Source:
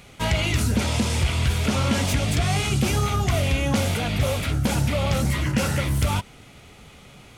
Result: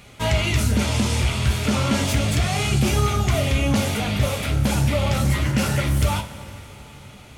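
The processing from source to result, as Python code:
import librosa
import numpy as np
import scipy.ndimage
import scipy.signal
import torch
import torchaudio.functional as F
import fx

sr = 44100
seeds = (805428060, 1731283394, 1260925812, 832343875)

y = fx.rev_double_slope(x, sr, seeds[0], early_s=0.26, late_s=4.0, knee_db=-18, drr_db=4.0)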